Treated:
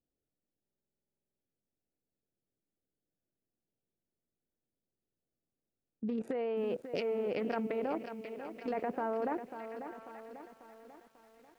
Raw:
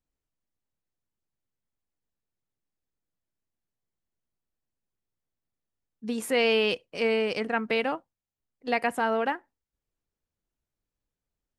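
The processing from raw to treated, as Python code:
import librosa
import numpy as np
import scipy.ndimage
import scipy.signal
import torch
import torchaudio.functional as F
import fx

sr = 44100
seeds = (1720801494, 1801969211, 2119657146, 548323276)

y = fx.wiener(x, sr, points=41)
y = fx.env_lowpass_down(y, sr, base_hz=1200.0, full_db=-24.0)
y = fx.low_shelf(y, sr, hz=100.0, db=-10.5)
y = fx.echo_wet_highpass(y, sr, ms=878, feedback_pct=33, hz=1800.0, wet_db=-19.0)
y = fx.over_compress(y, sr, threshold_db=-33.0, ratio=-1.0)
y = fx.peak_eq(y, sr, hz=460.0, db=5.0, octaves=2.7)
y = fx.level_steps(y, sr, step_db=19)
y = fx.buffer_glitch(y, sr, at_s=(0.62,), block=2048, repeats=16)
y = fx.echo_crushed(y, sr, ms=543, feedback_pct=55, bits=11, wet_db=-9.5)
y = y * librosa.db_to_amplitude(4.0)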